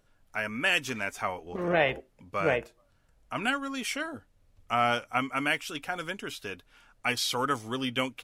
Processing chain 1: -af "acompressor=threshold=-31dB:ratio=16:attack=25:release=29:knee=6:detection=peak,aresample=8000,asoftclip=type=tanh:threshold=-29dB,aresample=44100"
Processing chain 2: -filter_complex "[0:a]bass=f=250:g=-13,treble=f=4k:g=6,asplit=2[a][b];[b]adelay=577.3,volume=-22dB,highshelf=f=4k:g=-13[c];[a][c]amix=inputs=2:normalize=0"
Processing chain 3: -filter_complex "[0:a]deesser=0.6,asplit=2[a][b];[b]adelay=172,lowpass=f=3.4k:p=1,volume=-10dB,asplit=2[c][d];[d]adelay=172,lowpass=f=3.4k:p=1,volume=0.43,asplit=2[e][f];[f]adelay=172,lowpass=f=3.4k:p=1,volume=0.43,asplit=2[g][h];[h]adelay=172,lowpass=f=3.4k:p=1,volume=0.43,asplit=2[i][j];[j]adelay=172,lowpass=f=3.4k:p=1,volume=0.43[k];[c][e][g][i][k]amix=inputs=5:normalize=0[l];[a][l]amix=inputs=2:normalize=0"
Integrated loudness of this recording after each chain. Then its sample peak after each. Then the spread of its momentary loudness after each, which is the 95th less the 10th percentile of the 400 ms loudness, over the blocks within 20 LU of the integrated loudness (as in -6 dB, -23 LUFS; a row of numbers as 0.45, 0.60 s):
-36.5, -29.5, -30.0 LUFS; -24.5, -10.0, -10.5 dBFS; 7, 12, 12 LU